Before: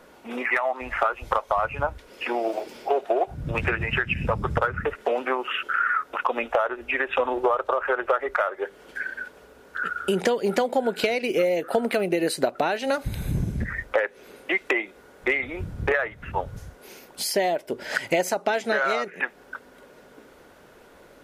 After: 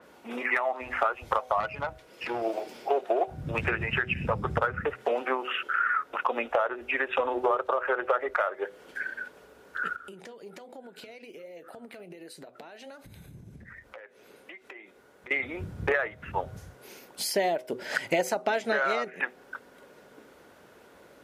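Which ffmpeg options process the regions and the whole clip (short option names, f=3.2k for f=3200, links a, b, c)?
-filter_complex "[0:a]asettb=1/sr,asplit=3[a][b][c];[a]atrim=end=1.604[d];[b]atrim=start=1.6:end=2.42,asetpts=PTS-STARTPTS,afade=t=in:d=0.004:c=qsin,afade=t=out:st=0.816:d=0.004:c=qsin,aecho=1:1:6.1:0.32,atrim=end_sample=36162,aeval=exprs='(tanh(10*val(0)+0.55)-tanh(0.55))/10':c=same[e];[c]atrim=start=2.416[f];[d][e]acrossfade=d=0.004:c1=hsin:c2=qsin[g];[g][f]acrossfade=d=0.004:c1=qsin:c2=hsin,asettb=1/sr,asplit=3[h][i][j];[h]atrim=end=9.964[k];[i]atrim=start=9.96:end=15.31,asetpts=PTS-STARTPTS,afade=t=in:d=0.004:c=qsin,afade=t=out:st=5.346:d=0.004:c=qsin,acompressor=threshold=-35dB:ratio=8:attack=3.2:release=140:knee=1:detection=peak,flanger=delay=2.8:depth=6.6:regen=75:speed=1.3:shape=triangular[l];[j]atrim=start=15.306[m];[k][l]acrossfade=d=0.004:c1=hsin:c2=qsin[n];[n][m]acrossfade=d=0.004:c1=qsin:c2=hsin,highpass=74,bandreject=f=126.2:t=h:w=4,bandreject=f=252.4:t=h:w=4,bandreject=f=378.6:t=h:w=4,bandreject=f=504.8:t=h:w=4,bandreject=f=631:t=h:w=4,bandreject=f=757.2:t=h:w=4,adynamicequalizer=threshold=0.01:dfrequency=4400:dqfactor=0.7:tfrequency=4400:tqfactor=0.7:attack=5:release=100:ratio=0.375:range=2:mode=cutabove:tftype=highshelf,volume=-3dB"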